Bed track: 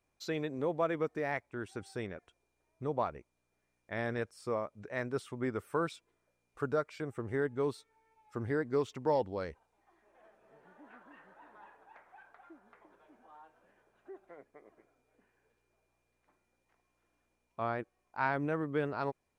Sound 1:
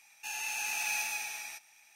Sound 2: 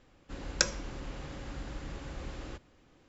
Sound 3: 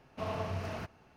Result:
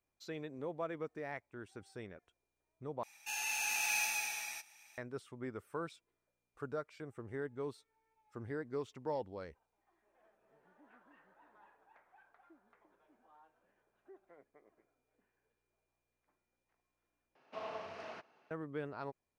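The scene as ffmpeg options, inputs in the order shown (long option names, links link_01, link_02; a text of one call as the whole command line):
ffmpeg -i bed.wav -i cue0.wav -i cue1.wav -i cue2.wav -filter_complex "[0:a]volume=-8.5dB[link_01];[3:a]highpass=390,lowpass=5200[link_02];[link_01]asplit=3[link_03][link_04][link_05];[link_03]atrim=end=3.034[link_06];[1:a]atrim=end=1.95,asetpts=PTS-STARTPTS,volume=-1dB[link_07];[link_04]atrim=start=4.976:end=17.354[link_08];[link_02]atrim=end=1.16,asetpts=PTS-STARTPTS,volume=-5.5dB[link_09];[link_05]atrim=start=18.506[link_10];[link_06][link_07]acrossfade=duration=0.004:curve1=hsin:curve2=hsin[link_11];[link_11][link_08]acrossfade=duration=0.004:curve1=hsin:curve2=hsin[link_12];[link_12][link_09]acrossfade=duration=0.004:curve1=hsin:curve2=hsin[link_13];[link_13][link_10]acrossfade=duration=0.004:curve1=hsin:curve2=hsin" out.wav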